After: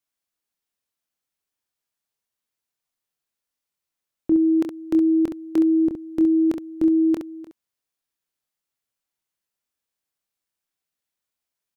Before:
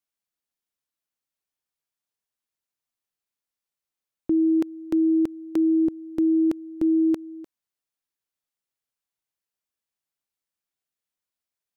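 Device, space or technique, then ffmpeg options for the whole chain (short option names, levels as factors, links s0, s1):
slapback doubling: -filter_complex "[0:a]asplit=3[s0][s1][s2];[s1]adelay=25,volume=0.398[s3];[s2]adelay=67,volume=0.447[s4];[s0][s3][s4]amix=inputs=3:normalize=0,volume=1.26"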